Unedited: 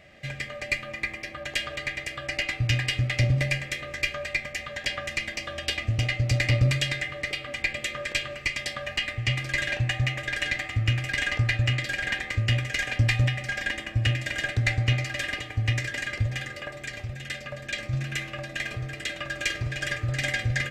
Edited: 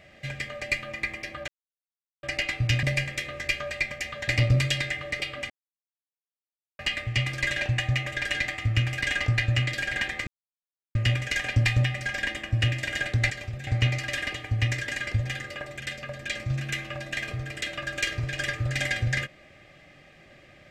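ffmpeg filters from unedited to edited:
-filter_complex "[0:a]asplit=11[a][b][c][d][e][f][g][h][i][j][k];[a]atrim=end=1.48,asetpts=PTS-STARTPTS,afade=t=out:st=1.476:d=0.004:c=hsin[l];[b]atrim=start=1.48:end=2.23,asetpts=PTS-STARTPTS,volume=0[m];[c]atrim=start=2.23:end=2.832,asetpts=PTS-STARTPTS,afade=t=in:d=0.004:c=hsin[n];[d]atrim=start=3.368:end=4.822[o];[e]atrim=start=6.388:end=7.61,asetpts=PTS-STARTPTS,afade=t=out:st=1.218:d=0.004:c=hsin[p];[f]atrim=start=7.61:end=8.9,asetpts=PTS-STARTPTS,volume=0[q];[g]atrim=start=8.9:end=12.38,asetpts=PTS-STARTPTS,afade=t=in:d=0.004:c=hsin,afade=t=out:st=3.476:d=0.004:c=hsin,apad=pad_dur=0.68[r];[h]atrim=start=12.38:end=14.732,asetpts=PTS-STARTPTS,afade=t=in:d=0.004:c=hsin[s];[i]atrim=start=16.858:end=17.232[t];[j]atrim=start=14.728:end=16.862[u];[k]atrim=start=17.228[v];[l][m][n]concat=n=3:v=0:a=1[w];[w][o]acrossfade=d=0.004:c1=hsin:c2=hsin[x];[p][q][r][s]concat=n=4:v=0:a=1[y];[x][y]acrossfade=d=0.004:c1=hsin:c2=hsin[z];[z][t]acrossfade=d=0.004:c1=hsin:c2=hsin[aa];[aa][u]acrossfade=d=0.004:c1=hsin:c2=hsin[ab];[ab][v]acrossfade=d=0.004:c1=hsin:c2=hsin"

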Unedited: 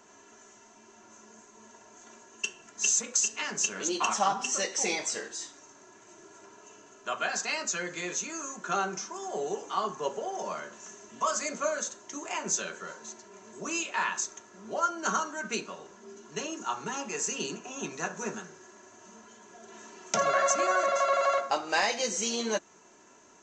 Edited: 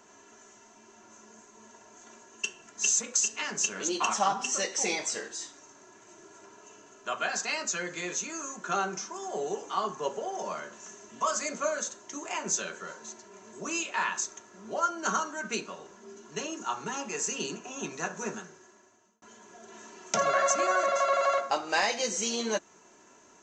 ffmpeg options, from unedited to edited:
-filter_complex "[0:a]asplit=2[a][b];[a]atrim=end=19.22,asetpts=PTS-STARTPTS,afade=t=out:st=18.33:d=0.89[c];[b]atrim=start=19.22,asetpts=PTS-STARTPTS,afade=t=in:d=0.004:c=hsin[d];[c][d]concat=n=2:v=0:a=1"

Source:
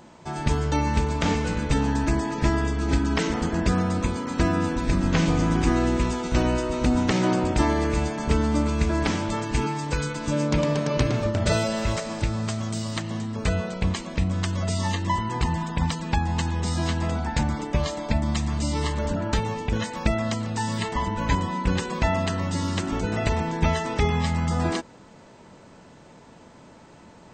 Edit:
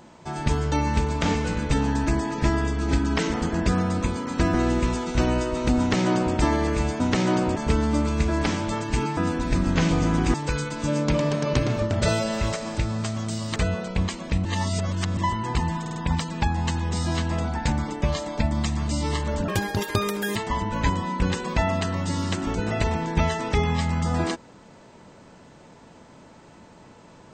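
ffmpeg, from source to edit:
-filter_complex "[0:a]asplit=14[a][b][c][d][e][f][g][h][i][j][k][l][m][n];[a]atrim=end=4.542[o];[b]atrim=start=5.708:end=8.172[p];[c]atrim=start=6.958:end=7.522[q];[d]atrim=start=8.168:end=9.782[r];[e]atrim=start=4.538:end=5.712[s];[f]atrim=start=9.778:end=13.002[t];[g]atrim=start=13.418:end=14.312[u];[h]atrim=start=14.308:end=15.032,asetpts=PTS-STARTPTS,areverse[v];[i]atrim=start=15.028:end=15.722[w];[j]atrim=start=15.668:end=15.722[x];[k]atrim=start=15.668:end=15.722[y];[l]atrim=start=15.668:end=19.194[z];[m]atrim=start=19.19:end=20.81,asetpts=PTS-STARTPTS,asetrate=81585,aresample=44100,atrim=end_sample=38617,asetpts=PTS-STARTPTS[aa];[n]atrim=start=20.806[ab];[o][p]acrossfade=d=0.004:c1=hsin:c2=hsin[ac];[ac][q]acrossfade=d=0.004:c1=hsin:c2=hsin[ad];[ad][r]acrossfade=d=0.004:c1=hsin:c2=hsin[ae];[ae][s]acrossfade=d=0.004:c1=hsin:c2=hsin[af];[af][t]acrossfade=d=0.004:c1=hsin:c2=hsin[ag];[ag][u]acrossfade=d=0.004:c1=hsin:c2=hsin[ah];[ah][v]acrossfade=d=0.004:c1=hsin:c2=hsin[ai];[ai][w]acrossfade=d=0.004:c1=hsin:c2=hsin[aj];[aj][x]acrossfade=d=0.004:c1=hsin:c2=hsin[ak];[ak][y]acrossfade=d=0.004:c1=hsin:c2=hsin[al];[al][z]acrossfade=d=0.004:c1=hsin:c2=hsin[am];[am][aa]acrossfade=d=0.004:c1=hsin:c2=hsin[an];[an][ab]acrossfade=d=0.004:c1=hsin:c2=hsin"

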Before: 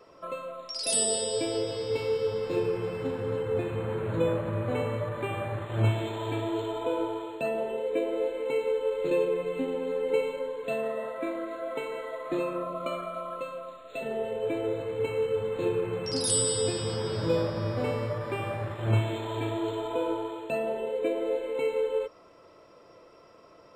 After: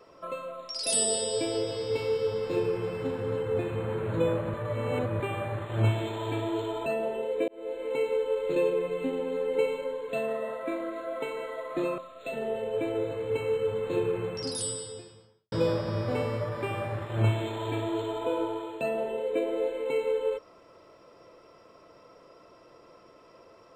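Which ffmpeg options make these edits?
-filter_complex "[0:a]asplit=7[a][b][c][d][e][f][g];[a]atrim=end=4.542[h];[b]atrim=start=4.538:end=5.202,asetpts=PTS-STARTPTS,areverse[i];[c]atrim=start=5.198:end=6.862[j];[d]atrim=start=7.408:end=8.03,asetpts=PTS-STARTPTS,afade=t=out:st=0.618:d=0.004:c=hsin[k];[e]atrim=start=8.03:end=12.532,asetpts=PTS-STARTPTS,afade=t=in:d=0.43[l];[f]atrim=start=13.668:end=17.21,asetpts=PTS-STARTPTS,afade=t=out:st=2.232:d=1.31:c=qua[m];[g]atrim=start=17.21,asetpts=PTS-STARTPTS,afade=t=in:d=0.004:c=hsin[n];[h][i]acrossfade=d=0.004:c1=hsin:c2=hsin[o];[o][j]acrossfade=d=0.004:c1=hsin:c2=hsin[p];[k][l]concat=n=2:v=0:a=1[q];[p][q]acrossfade=d=0.004:c1=hsin:c2=hsin[r];[m][n]concat=n=2:v=0:a=1[s];[r][s]acrossfade=d=0.004:c1=hsin:c2=hsin"

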